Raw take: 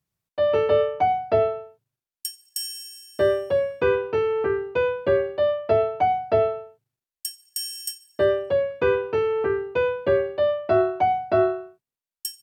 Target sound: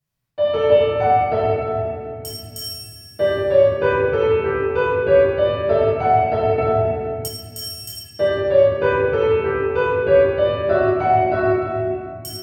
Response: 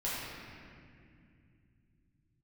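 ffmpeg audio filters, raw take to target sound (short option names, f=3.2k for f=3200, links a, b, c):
-filter_complex "[1:a]atrim=start_sample=2205[a];[0:a][a]afir=irnorm=-1:irlink=0,asettb=1/sr,asplit=3[b][c][d];[b]atrim=end=6.584[e];[c]atrim=start=6.58:end=7.28,asetpts=PTS-STARTPTS,afade=t=in:d=0.004:c=qsin,afade=t=out:st=0.696:d=0.004:c=qsin,acontrast=26[f];[d]atrim=start=7.276[g];[e][f]acrossfade=d=0.004:c1=hsin:c2=qsin[h];[h][g]acrossfade=d=0.004:c1=qsin:c2=hsin"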